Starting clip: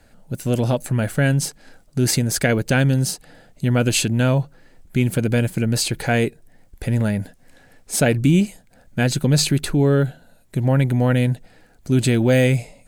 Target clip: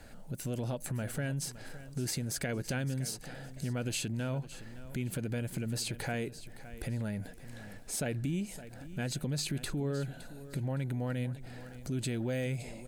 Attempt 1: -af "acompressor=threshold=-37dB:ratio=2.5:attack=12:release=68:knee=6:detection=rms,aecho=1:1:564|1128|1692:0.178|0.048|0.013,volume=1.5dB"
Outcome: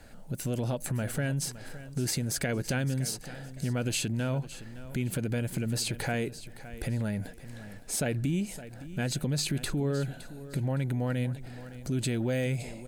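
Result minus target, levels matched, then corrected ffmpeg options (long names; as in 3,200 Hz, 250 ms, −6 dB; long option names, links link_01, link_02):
downward compressor: peak gain reduction −4.5 dB
-af "acompressor=threshold=-44.5dB:ratio=2.5:attack=12:release=68:knee=6:detection=rms,aecho=1:1:564|1128|1692:0.178|0.048|0.013,volume=1.5dB"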